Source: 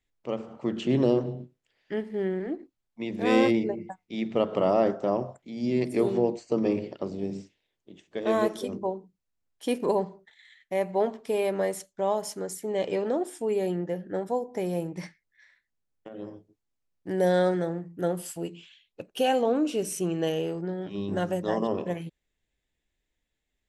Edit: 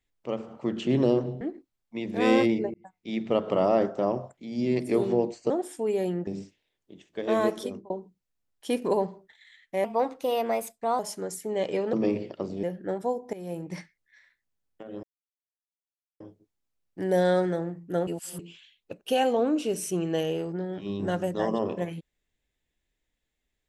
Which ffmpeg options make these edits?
-filter_complex "[0:a]asplit=14[s0][s1][s2][s3][s4][s5][s6][s7][s8][s9][s10][s11][s12][s13];[s0]atrim=end=1.412[s14];[s1]atrim=start=2.458:end=3.79,asetpts=PTS-STARTPTS,afade=t=out:st=1.328:d=0.004:c=hsin[s15];[s2]atrim=start=3.79:end=6.552,asetpts=PTS-STARTPTS,afade=t=in:d=0.35[s16];[s3]atrim=start=13.118:end=13.892[s17];[s4]atrim=start=7.248:end=8.88,asetpts=PTS-STARTPTS,afade=t=out:st=1.382:d=0.25[s18];[s5]atrim=start=8.88:end=10.824,asetpts=PTS-STARTPTS,afade=t=in:d=0.004:c=hsin[s19];[s6]atrim=start=10.82:end=12.18,asetpts=PTS-STARTPTS,asetrate=52038,aresample=44100,atrim=end_sample=50827,asetpts=PTS-STARTPTS[s20];[s7]atrim=start=12.176:end=13.122[s21];[s8]atrim=start=6.548:end=7.252[s22];[s9]atrim=start=13.888:end=14.59,asetpts=PTS-STARTPTS,afade=t=out:st=0.698:d=0.004:c=hsin:silence=0.16788[s23];[s10]atrim=start=14.59:end=16.29,asetpts=PTS-STARTPTS,afade=t=in:d=0.39:silence=0.16788,afade=t=out:st=1.696:d=0.004:c=hsin,apad=pad_dur=1.17[s24];[s11]atrim=start=16.29:end=18.162,asetpts=PTS-STARTPTS,afade=t=in:d=0.004:c=hsin[s25];[s12]atrim=start=18.158:end=18.482,asetpts=PTS-STARTPTS,areverse[s26];[s13]atrim=start=18.478[s27];[s15][s16]concat=n=2:v=0:a=1[s28];[s14][s28]acrossfade=d=0.004:c1=hsin:c2=hsin[s29];[s29][s17]acrossfade=d=0.004:c1=hsin:c2=hsin[s30];[s18][s19]concat=n=2:v=0:a=1[s31];[s30][s31]acrossfade=d=0.004:c1=hsin:c2=hsin[s32];[s32][s20]acrossfade=d=0.004:c1=hsin:c2=hsin[s33];[s33][s21]acrossfade=d=0.004:c1=hsin:c2=hsin[s34];[s34][s22]acrossfade=d=0.004:c1=hsin:c2=hsin[s35];[s23][s24][s25]concat=n=3:v=0:a=1[s36];[s35][s36]acrossfade=d=0.004:c1=hsin:c2=hsin[s37];[s37][s26]acrossfade=d=0.004:c1=hsin:c2=hsin[s38];[s38][s27]acrossfade=d=0.004:c1=hsin:c2=hsin"

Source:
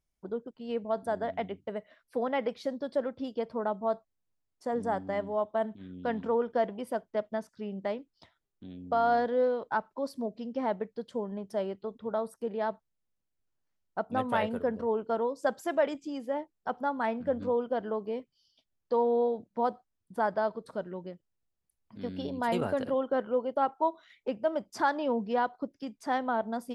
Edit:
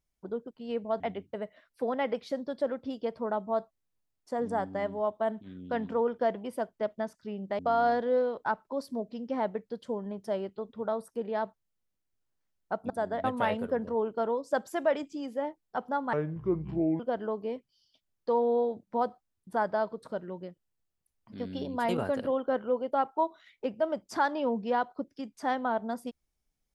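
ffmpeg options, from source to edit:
-filter_complex "[0:a]asplit=7[s0][s1][s2][s3][s4][s5][s6];[s0]atrim=end=1.002[s7];[s1]atrim=start=1.338:end=7.932[s8];[s2]atrim=start=8.848:end=14.162[s9];[s3]atrim=start=0.998:end=1.342[s10];[s4]atrim=start=14.158:end=17.054[s11];[s5]atrim=start=17.05:end=17.63,asetpts=PTS-STARTPTS,asetrate=29547,aresample=44100,atrim=end_sample=38176,asetpts=PTS-STARTPTS[s12];[s6]atrim=start=17.626[s13];[s7][s8]acrossfade=d=0.004:c1=hsin:c2=hsin[s14];[s14][s9]acrossfade=d=0.004:c1=hsin:c2=hsin[s15];[s15][s10]acrossfade=d=0.004:c1=hsin:c2=hsin[s16];[s16][s11]acrossfade=d=0.004:c1=hsin:c2=hsin[s17];[s17][s12]acrossfade=d=0.004:c1=hsin:c2=hsin[s18];[s18][s13]acrossfade=d=0.004:c1=hsin:c2=hsin"

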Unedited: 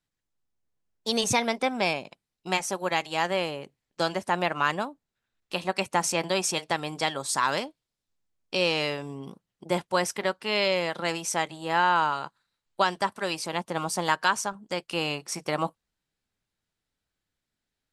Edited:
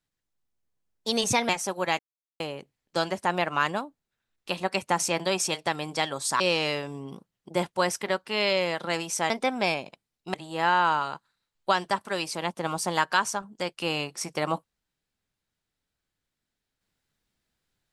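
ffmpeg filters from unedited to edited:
-filter_complex "[0:a]asplit=7[s0][s1][s2][s3][s4][s5][s6];[s0]atrim=end=1.492[s7];[s1]atrim=start=2.528:end=3.03,asetpts=PTS-STARTPTS,afade=t=out:st=0.498:d=0.004:c=hsin[s8];[s2]atrim=start=3.03:end=3.44,asetpts=PTS-STARTPTS,volume=0[s9];[s3]atrim=start=3.44:end=7.442,asetpts=PTS-STARTPTS,afade=t=in:d=0.004:c=hsin[s10];[s4]atrim=start=8.548:end=11.452[s11];[s5]atrim=start=1.488:end=2.532[s12];[s6]atrim=start=11.448[s13];[s8][s9][s10]concat=n=3:v=0:a=1[s14];[s7][s14]acrossfade=d=0.004:c1=hsin:c2=hsin[s15];[s15][s11]acrossfade=d=0.004:c1=hsin:c2=hsin[s16];[s16][s12]acrossfade=d=0.004:c1=hsin:c2=hsin[s17];[s17][s13]acrossfade=d=0.004:c1=hsin:c2=hsin"

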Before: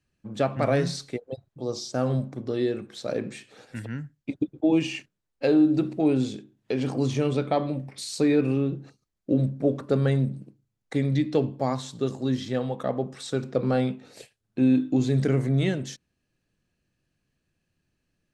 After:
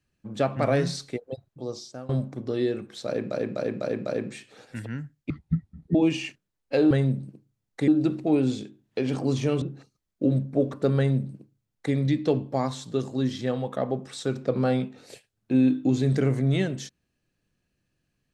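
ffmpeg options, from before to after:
-filter_complex "[0:a]asplit=11[s0][s1][s2][s3][s4][s5][s6][s7][s8][s9][s10];[s0]atrim=end=2.09,asetpts=PTS-STARTPTS,afade=t=out:st=1.47:d=0.62:silence=0.0891251[s11];[s1]atrim=start=2.09:end=3.312,asetpts=PTS-STARTPTS,afade=t=in:d=0.004:c=hsin:silence=0.0891251[s12];[s2]atrim=start=3.058:end=3.312[s13];[s3]atrim=start=3.058:end=3.312[s14];[s4]atrim=start=3.058:end=3.312[s15];[s5]atrim=start=3.058:end=4.304[s16];[s6]atrim=start=4.3:end=4.65,asetpts=PTS-STARTPTS,asetrate=23814,aresample=44100,atrim=end_sample=28583,asetpts=PTS-STARTPTS[s17];[s7]atrim=start=4.646:end=5.612[s18];[s8]atrim=start=10.038:end=11.012[s19];[s9]atrim=start=5.608:end=7.352[s20];[s10]atrim=start=8.688[s21];[s11][s12]concat=n=2:v=0:a=1[s22];[s22][s13]acrossfade=d=0.004:c1=hsin:c2=hsin[s23];[s23][s14]acrossfade=d=0.004:c1=hsin:c2=hsin[s24];[s24][s15]acrossfade=d=0.004:c1=hsin:c2=hsin[s25];[s25][s16]acrossfade=d=0.004:c1=hsin:c2=hsin[s26];[s26][s17]acrossfade=d=0.004:c1=hsin:c2=hsin[s27];[s27][s18]acrossfade=d=0.004:c1=hsin:c2=hsin[s28];[s28][s19]acrossfade=d=0.004:c1=hsin:c2=hsin[s29];[s29][s20]acrossfade=d=0.004:c1=hsin:c2=hsin[s30];[s30][s21]acrossfade=d=0.004:c1=hsin:c2=hsin"

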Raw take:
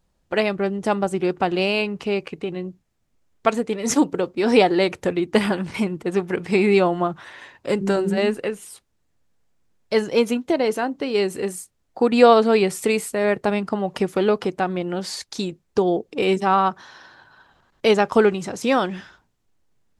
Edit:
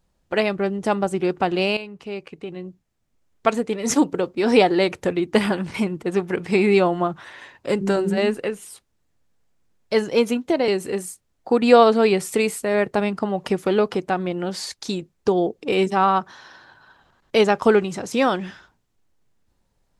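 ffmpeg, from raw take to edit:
-filter_complex "[0:a]asplit=3[s0][s1][s2];[s0]atrim=end=1.77,asetpts=PTS-STARTPTS,afade=t=out:st=1.766:d=0.004:c=hsin:silence=0.237137[s3];[s1]atrim=start=1.77:end=10.682,asetpts=PTS-STARTPTS,afade=t=in:d=1.73:silence=0.237137[s4];[s2]atrim=start=11.178[s5];[s3][s4]concat=n=2:v=0:a=1[s6];[s6][s5]acrossfade=d=0.004:c1=hsin:c2=hsin"

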